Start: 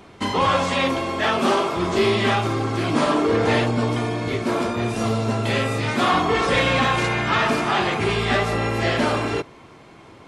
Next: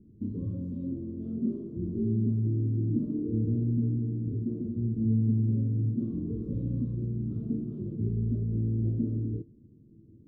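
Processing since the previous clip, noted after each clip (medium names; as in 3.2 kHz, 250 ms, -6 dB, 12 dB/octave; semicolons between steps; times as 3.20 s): inverse Chebyshev low-pass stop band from 740 Hz, stop band 50 dB; feedback comb 110 Hz, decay 0.17 s, harmonics all, mix 60%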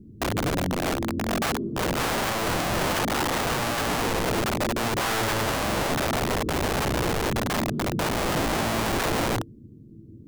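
integer overflow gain 29.5 dB; trim +9 dB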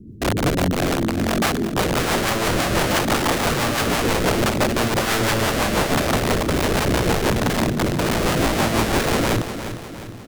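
rotary cabinet horn 6 Hz; on a send: feedback delay 354 ms, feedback 48%, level -10.5 dB; on the sum: trim +7.5 dB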